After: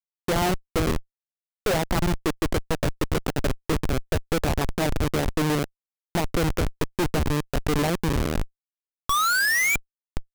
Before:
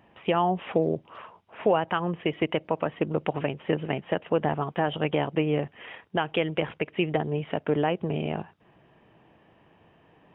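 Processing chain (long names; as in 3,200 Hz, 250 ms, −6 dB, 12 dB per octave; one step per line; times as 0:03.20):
linear delta modulator 64 kbit/s, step −41 dBFS
sound drawn into the spectrogram rise, 0:09.09–0:09.76, 1,100–2,400 Hz −19 dBFS
high-pass filter 59 Hz 6 dB per octave
delay with a high-pass on its return 440 ms, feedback 36%, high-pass 2,800 Hz, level −7 dB
comparator with hysteresis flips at −25.5 dBFS
level +5.5 dB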